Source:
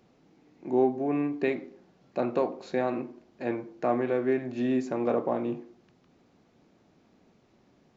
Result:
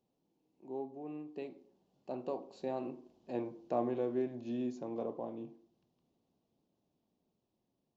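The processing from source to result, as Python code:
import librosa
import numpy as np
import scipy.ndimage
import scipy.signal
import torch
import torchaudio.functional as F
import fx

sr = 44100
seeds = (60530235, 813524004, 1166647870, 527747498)

y = fx.doppler_pass(x, sr, speed_mps=14, closest_m=12.0, pass_at_s=3.6)
y = fx.band_shelf(y, sr, hz=1700.0, db=-11.0, octaves=1.1)
y = y * librosa.db_to_amplitude(-6.5)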